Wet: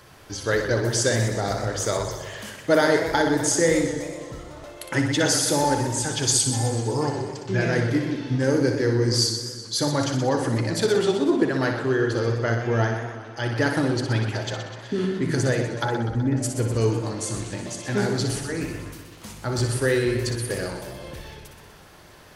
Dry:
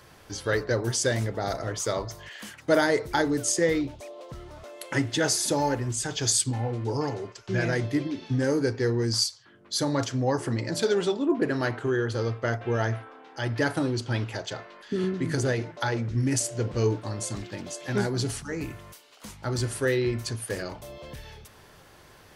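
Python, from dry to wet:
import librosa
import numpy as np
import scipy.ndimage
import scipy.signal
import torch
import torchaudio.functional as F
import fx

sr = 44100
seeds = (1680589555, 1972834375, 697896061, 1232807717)

y = fx.lowpass(x, sr, hz=1300.0, slope=12, at=(15.84, 16.42), fade=0.02)
y = fx.room_flutter(y, sr, wall_m=10.4, rt60_s=0.5)
y = fx.echo_warbled(y, sr, ms=125, feedback_pct=63, rate_hz=2.8, cents=119, wet_db=-10.0)
y = y * librosa.db_to_amplitude(2.5)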